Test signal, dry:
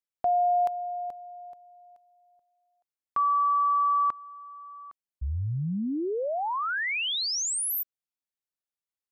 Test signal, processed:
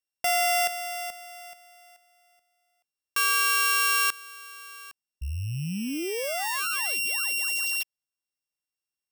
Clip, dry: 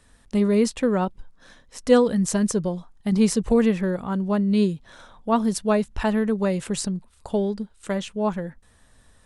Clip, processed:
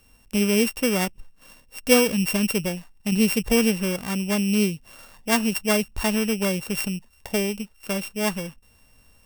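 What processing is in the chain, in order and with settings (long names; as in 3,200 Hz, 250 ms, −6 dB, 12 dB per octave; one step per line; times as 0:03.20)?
samples sorted by size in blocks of 16 samples
high-shelf EQ 5,500 Hz +7 dB
level −1.5 dB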